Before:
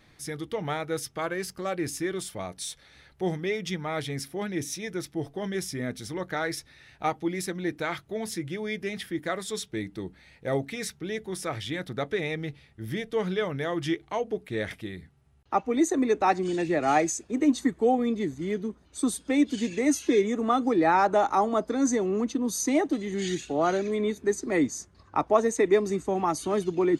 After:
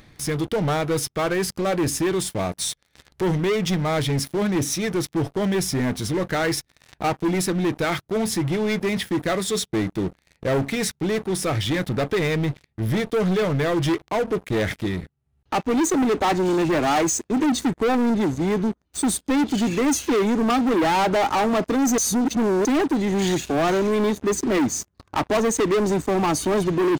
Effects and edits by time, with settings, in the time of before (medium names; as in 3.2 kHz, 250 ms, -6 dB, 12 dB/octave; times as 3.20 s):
21.98–22.65 s: reverse
whole clip: bass shelf 350 Hz +5.5 dB; waveshaping leveller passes 5; upward compressor, threshold -24 dBFS; trim -8.5 dB